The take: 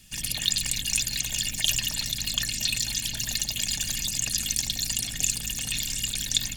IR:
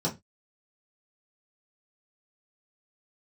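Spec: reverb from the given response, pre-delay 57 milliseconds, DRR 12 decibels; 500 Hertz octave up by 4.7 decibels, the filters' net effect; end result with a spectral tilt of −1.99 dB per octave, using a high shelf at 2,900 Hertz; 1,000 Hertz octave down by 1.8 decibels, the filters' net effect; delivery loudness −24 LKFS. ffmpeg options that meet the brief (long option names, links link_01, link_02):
-filter_complex "[0:a]equalizer=frequency=500:width_type=o:gain=7.5,equalizer=frequency=1000:width_type=o:gain=-4.5,highshelf=frequency=2900:gain=-6,asplit=2[link_01][link_02];[1:a]atrim=start_sample=2205,adelay=57[link_03];[link_02][link_03]afir=irnorm=-1:irlink=0,volume=-19.5dB[link_04];[link_01][link_04]amix=inputs=2:normalize=0,volume=6dB"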